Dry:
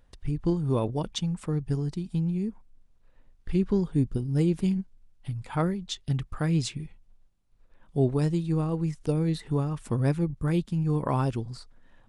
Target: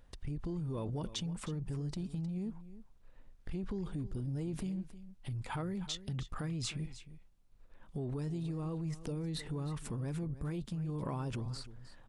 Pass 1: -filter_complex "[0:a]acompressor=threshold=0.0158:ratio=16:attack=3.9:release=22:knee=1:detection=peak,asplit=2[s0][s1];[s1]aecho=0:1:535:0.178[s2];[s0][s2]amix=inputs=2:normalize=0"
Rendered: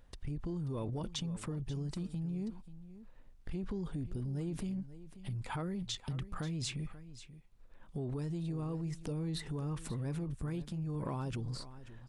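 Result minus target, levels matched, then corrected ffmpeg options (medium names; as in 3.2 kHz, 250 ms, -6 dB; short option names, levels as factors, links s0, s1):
echo 224 ms late
-filter_complex "[0:a]acompressor=threshold=0.0158:ratio=16:attack=3.9:release=22:knee=1:detection=peak,asplit=2[s0][s1];[s1]aecho=0:1:311:0.178[s2];[s0][s2]amix=inputs=2:normalize=0"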